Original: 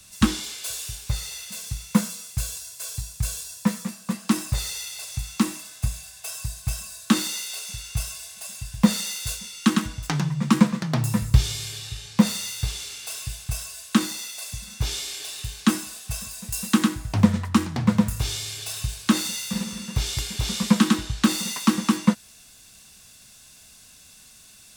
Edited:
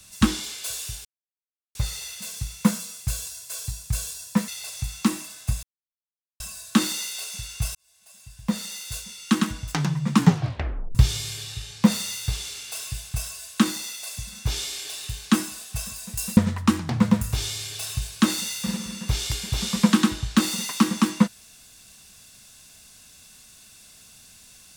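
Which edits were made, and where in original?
1.05 s: insert silence 0.70 s
3.78–4.83 s: delete
5.98–6.75 s: mute
8.10–9.95 s: fade in
10.50 s: tape stop 0.80 s
16.72–17.24 s: delete

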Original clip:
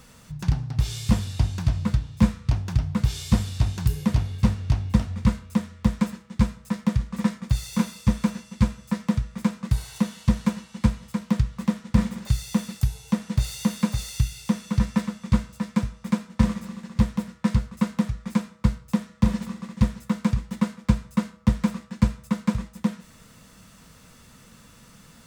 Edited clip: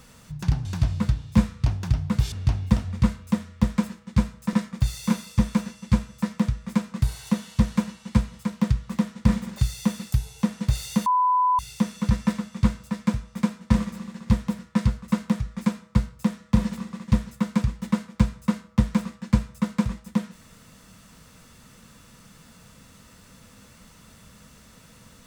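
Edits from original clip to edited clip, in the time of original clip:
0.65–1.50 s: delete
3.17–4.55 s: delete
6.76–7.22 s: delete
13.75–14.28 s: bleep 1 kHz -17 dBFS

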